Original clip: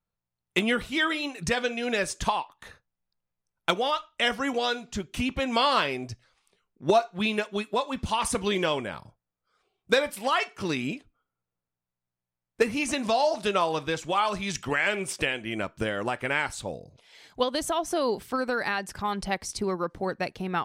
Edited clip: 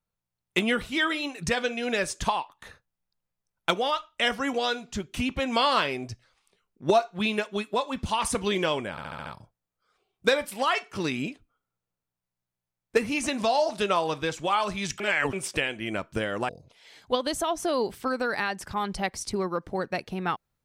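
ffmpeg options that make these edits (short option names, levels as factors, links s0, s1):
-filter_complex "[0:a]asplit=9[s0][s1][s2][s3][s4][s5][s6][s7][s8];[s0]atrim=end=8.982[s9];[s1]atrim=start=8.908:end=8.982[s10];[s2]atrim=start=8.908:end=8.982[s11];[s3]atrim=start=8.908:end=8.982[s12];[s4]atrim=start=8.908:end=8.982[s13];[s5]atrim=start=8.908:end=14.652[s14];[s6]atrim=start=14.648:end=14.982,asetpts=PTS-STARTPTS,areverse[s15];[s7]atrim=start=14.978:end=16.142[s16];[s8]atrim=start=16.768[s17];[s9][s10]acrossfade=d=0.004:c1=hsin:c2=hsin[s18];[s18][s11]acrossfade=d=0.004:c1=hsin:c2=hsin[s19];[s19][s12]acrossfade=d=0.004:c1=hsin:c2=hsin[s20];[s20][s13]acrossfade=d=0.004:c1=hsin:c2=hsin[s21];[s21][s14]acrossfade=d=0.004:c1=hsin:c2=hsin[s22];[s22][s15]acrossfade=d=0.004:c1=hsin:c2=hsin[s23];[s23][s16]acrossfade=d=0.004:c1=hsin:c2=hsin[s24];[s24][s17]acrossfade=d=0.004:c1=hsin:c2=hsin"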